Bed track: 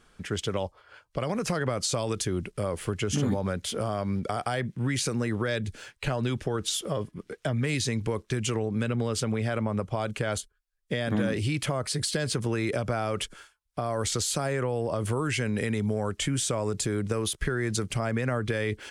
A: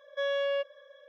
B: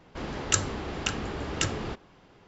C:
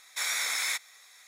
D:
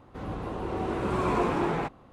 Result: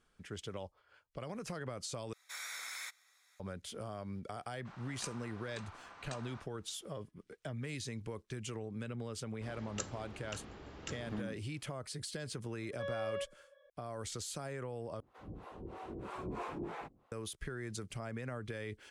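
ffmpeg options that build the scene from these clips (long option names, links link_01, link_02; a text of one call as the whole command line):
ffmpeg -i bed.wav -i cue0.wav -i cue1.wav -i cue2.wav -i cue3.wav -filter_complex "[2:a]asplit=2[link_01][link_02];[0:a]volume=-14dB[link_03];[3:a]equalizer=frequency=1400:width_type=o:width=0.61:gain=5[link_04];[link_01]aeval=exprs='val(0)*sin(2*PI*1100*n/s)':channel_layout=same[link_05];[1:a]lowpass=frequency=2100:poles=1[link_06];[4:a]acrossover=split=500[link_07][link_08];[link_07]aeval=exprs='val(0)*(1-1/2+1/2*cos(2*PI*3.1*n/s))':channel_layout=same[link_09];[link_08]aeval=exprs='val(0)*(1-1/2-1/2*cos(2*PI*3.1*n/s))':channel_layout=same[link_10];[link_09][link_10]amix=inputs=2:normalize=0[link_11];[link_03]asplit=3[link_12][link_13][link_14];[link_12]atrim=end=2.134[link_15];[link_04]atrim=end=1.27,asetpts=PTS-STARTPTS,volume=-15dB[link_16];[link_13]atrim=start=3.396:end=15.004[link_17];[link_11]atrim=end=2.12,asetpts=PTS-STARTPTS,volume=-10.5dB[link_18];[link_14]atrim=start=17.116[link_19];[link_05]atrim=end=2.47,asetpts=PTS-STARTPTS,volume=-18dB,afade=type=in:duration=0.004:curve=hsin,afade=type=out:start_time=2.466:duration=0.004:curve=hsin,adelay=4500[link_20];[link_02]atrim=end=2.47,asetpts=PTS-STARTPTS,volume=-17dB,afade=type=in:duration=0.004:curve=hsin,afade=type=out:start_time=2.466:duration=0.004:curve=hsin,adelay=9260[link_21];[link_06]atrim=end=1.08,asetpts=PTS-STARTPTS,volume=-9dB,afade=type=in:duration=0.004:curve=hsin,afade=type=out:start_time=1.076:duration=0.004:curve=hsin,adelay=12620[link_22];[link_15][link_16]acrossfade=duration=0.004:curve1=hsin:curve2=hsin[link_23];[link_23][link_17]acrossfade=duration=0.004:curve1=hsin:curve2=hsin[link_24];[link_24][link_18]acrossfade=duration=0.004:curve1=hsin:curve2=hsin[link_25];[link_25][link_19]acrossfade=duration=0.004:curve1=hsin:curve2=hsin[link_26];[link_26][link_20][link_21][link_22]amix=inputs=4:normalize=0" out.wav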